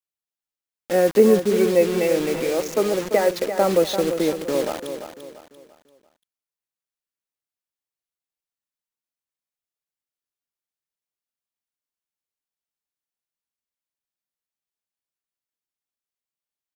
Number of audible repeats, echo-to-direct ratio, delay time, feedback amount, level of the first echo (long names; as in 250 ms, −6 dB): 4, −8.5 dB, 342 ms, 37%, −9.0 dB